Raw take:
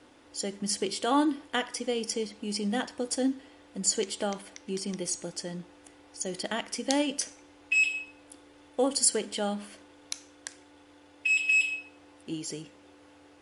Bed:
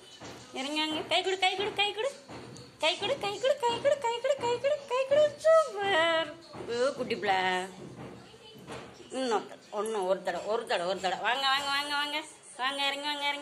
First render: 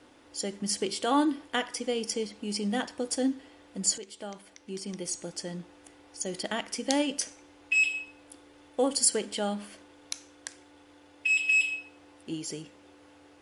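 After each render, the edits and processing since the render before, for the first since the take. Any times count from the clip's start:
0:03.98–0:05.49: fade in, from −13.5 dB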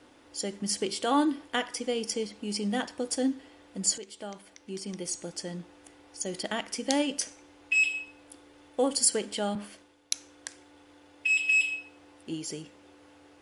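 0:09.55–0:10.14: multiband upward and downward expander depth 70%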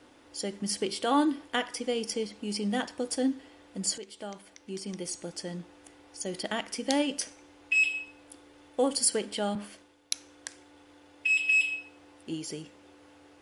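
dynamic equaliser 7,000 Hz, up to −5 dB, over −46 dBFS, Q 2.3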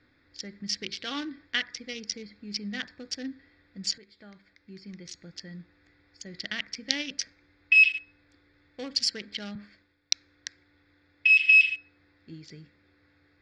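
adaptive Wiener filter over 15 samples
drawn EQ curve 140 Hz 0 dB, 290 Hz −10 dB, 630 Hz −15 dB, 910 Hz −17 dB, 1,900 Hz +7 dB, 5,600 Hz +8 dB, 9,800 Hz −27 dB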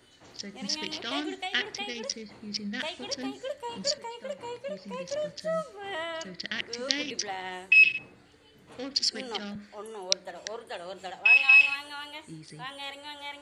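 mix in bed −9 dB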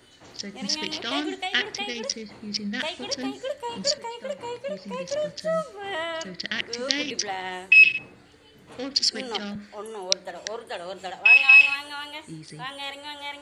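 level +4.5 dB
brickwall limiter −1 dBFS, peak gain reduction 1.5 dB

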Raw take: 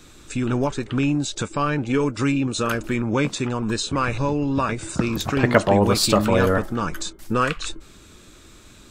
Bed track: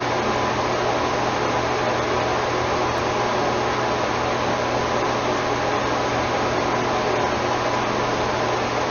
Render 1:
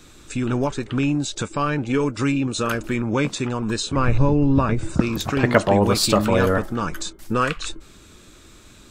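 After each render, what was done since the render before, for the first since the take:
0:03.96–0:05.00: spectral tilt −2.5 dB per octave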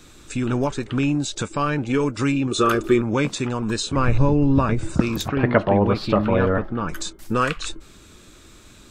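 0:02.51–0:03.01: hollow resonant body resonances 380/1,200/3,500 Hz, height 14 dB
0:05.28–0:06.89: high-frequency loss of the air 350 metres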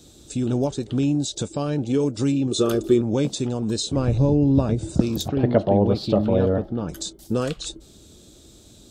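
high-pass filter 43 Hz
flat-topped bell 1,600 Hz −14 dB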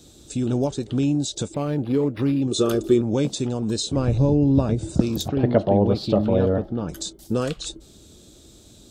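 0:01.54–0:02.42: linearly interpolated sample-rate reduction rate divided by 6×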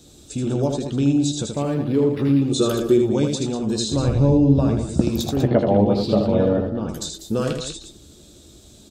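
double-tracking delay 14 ms −11.5 dB
loudspeakers that aren't time-aligned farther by 27 metres −5 dB, 67 metres −11 dB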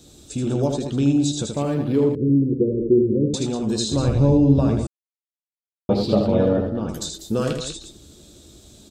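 0:02.15–0:03.34: Butterworth low-pass 530 Hz 96 dB per octave
0:04.87–0:05.89: silence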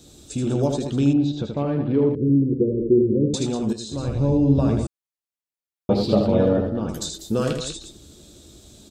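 0:01.13–0:03.01: high-frequency loss of the air 290 metres
0:03.73–0:04.79: fade in, from −12 dB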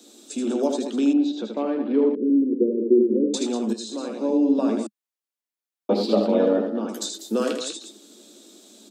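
Butterworth high-pass 210 Hz 72 dB per octave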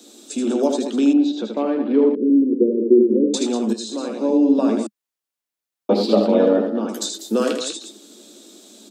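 level +4 dB

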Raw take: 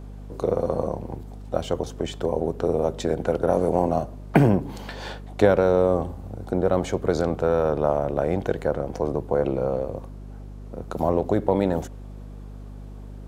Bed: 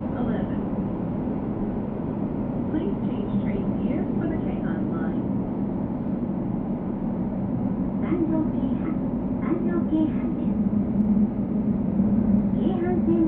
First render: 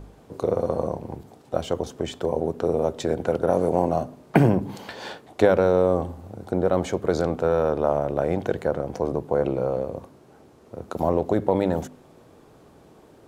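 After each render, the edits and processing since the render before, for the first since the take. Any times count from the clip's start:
hum removal 50 Hz, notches 5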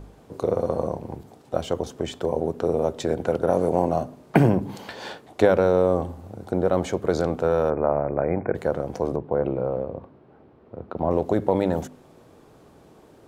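0:07.70–0:08.55: linear-phase brick-wall low-pass 2,500 Hz
0:09.16–0:11.11: high-frequency loss of the air 400 metres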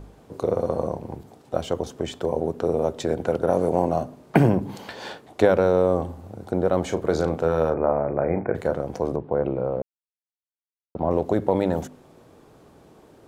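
0:06.85–0:08.74: double-tracking delay 37 ms −9.5 dB
0:09.82–0:10.95: silence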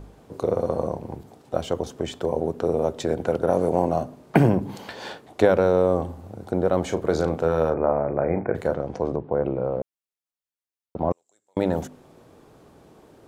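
0:08.74–0:09.62: high-frequency loss of the air 76 metres
0:11.12–0:11.57: resonant band-pass 7,500 Hz, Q 13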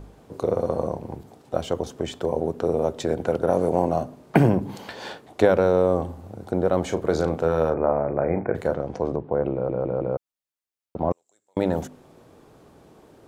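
0:09.53: stutter in place 0.16 s, 4 plays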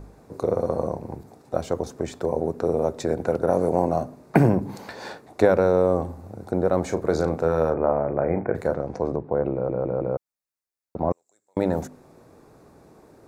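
parametric band 3,100 Hz −13.5 dB 0.29 octaves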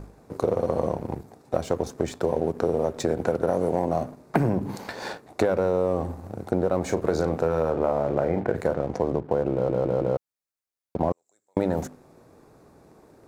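leveller curve on the samples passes 1
downward compressor, threshold −19 dBFS, peak gain reduction 9.5 dB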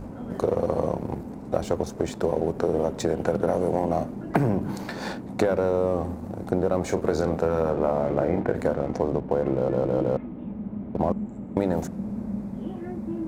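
mix in bed −10.5 dB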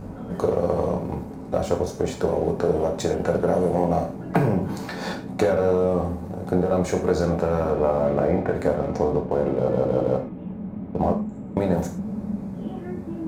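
reverb whose tail is shaped and stops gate 140 ms falling, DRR 1.5 dB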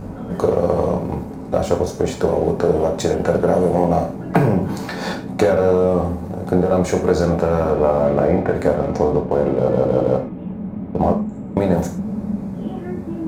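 level +5 dB

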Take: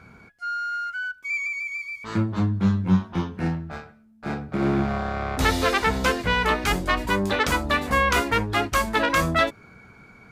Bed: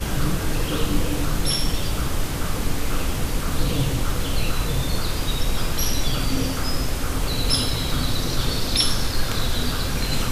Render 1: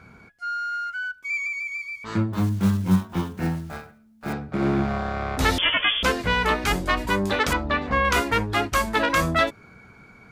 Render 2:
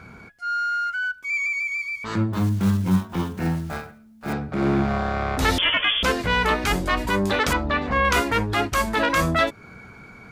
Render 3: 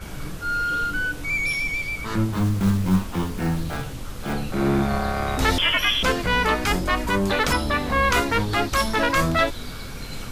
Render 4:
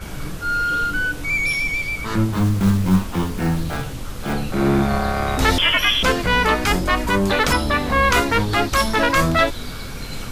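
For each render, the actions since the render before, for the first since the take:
0:02.33–0:04.35: one scale factor per block 5 bits; 0:05.58–0:06.03: voice inversion scrambler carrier 3,400 Hz; 0:07.53–0:08.05: high-frequency loss of the air 200 metres
in parallel at −1 dB: downward compressor, threshold −30 dBFS, peak gain reduction 15 dB; on the sum: transient designer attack −5 dB, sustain 0 dB
mix in bed −11 dB
level +3.5 dB

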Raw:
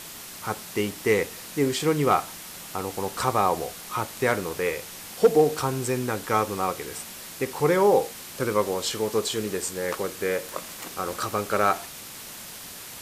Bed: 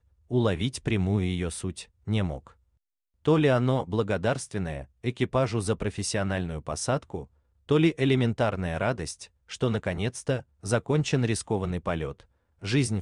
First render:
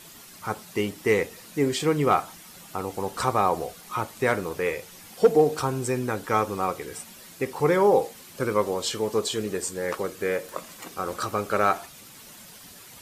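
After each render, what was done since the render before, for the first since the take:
broadband denoise 9 dB, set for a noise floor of −41 dBFS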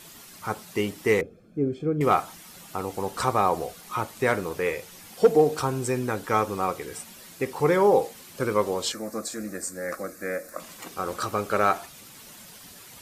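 0:01.21–0:02.01: moving average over 46 samples
0:08.92–0:10.60: phaser with its sweep stopped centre 620 Hz, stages 8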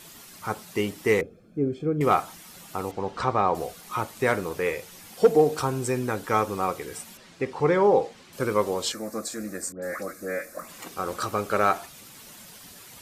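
0:02.91–0:03.55: high-frequency loss of the air 140 metres
0:07.17–0:08.33: high-frequency loss of the air 100 metres
0:09.72–0:10.78: all-pass dispersion highs, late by 107 ms, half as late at 1,800 Hz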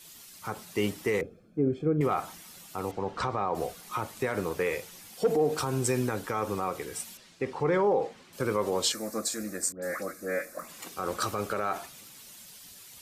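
brickwall limiter −18.5 dBFS, peak gain reduction 10 dB
multiband upward and downward expander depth 40%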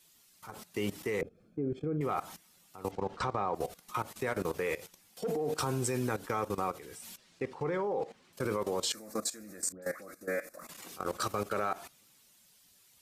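output level in coarse steps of 16 dB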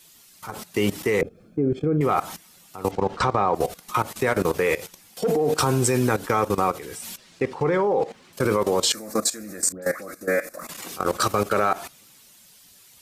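level +11.5 dB

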